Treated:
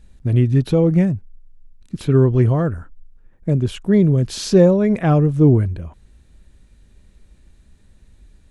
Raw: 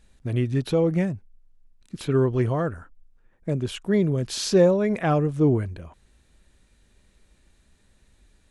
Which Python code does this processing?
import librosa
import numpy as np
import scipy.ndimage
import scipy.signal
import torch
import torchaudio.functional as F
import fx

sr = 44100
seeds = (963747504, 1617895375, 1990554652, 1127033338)

y = fx.low_shelf(x, sr, hz=300.0, db=10.5)
y = y * librosa.db_to_amplitude(1.0)